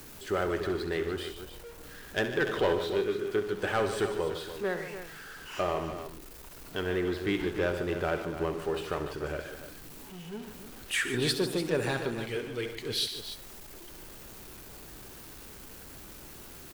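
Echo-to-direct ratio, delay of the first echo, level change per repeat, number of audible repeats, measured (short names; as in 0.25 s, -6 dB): -6.0 dB, 67 ms, no steady repeat, 3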